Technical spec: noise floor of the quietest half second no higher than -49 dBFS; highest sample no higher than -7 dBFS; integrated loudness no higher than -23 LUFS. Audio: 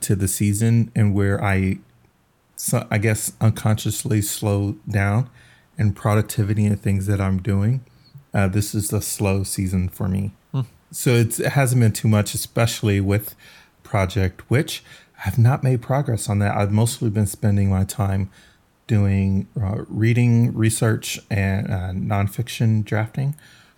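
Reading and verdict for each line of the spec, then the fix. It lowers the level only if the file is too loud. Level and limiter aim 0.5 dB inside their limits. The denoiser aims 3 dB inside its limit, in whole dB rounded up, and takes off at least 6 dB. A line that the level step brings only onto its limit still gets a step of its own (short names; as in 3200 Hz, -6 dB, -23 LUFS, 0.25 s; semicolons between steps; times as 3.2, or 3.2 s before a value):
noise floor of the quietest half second -60 dBFS: OK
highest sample -5.0 dBFS: fail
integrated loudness -21.0 LUFS: fail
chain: gain -2.5 dB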